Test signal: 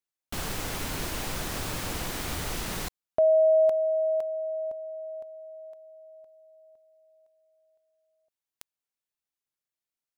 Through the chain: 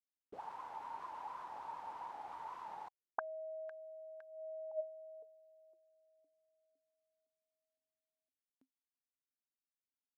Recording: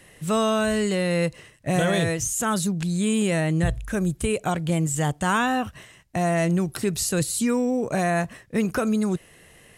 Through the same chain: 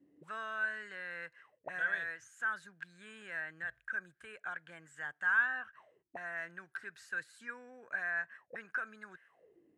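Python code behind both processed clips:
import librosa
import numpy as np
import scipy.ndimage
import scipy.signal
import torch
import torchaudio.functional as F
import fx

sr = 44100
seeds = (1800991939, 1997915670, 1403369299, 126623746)

y = fx.auto_wah(x, sr, base_hz=260.0, top_hz=1600.0, q=14.0, full_db=-25.5, direction='up')
y = y * 10.0 ** (3.5 / 20.0)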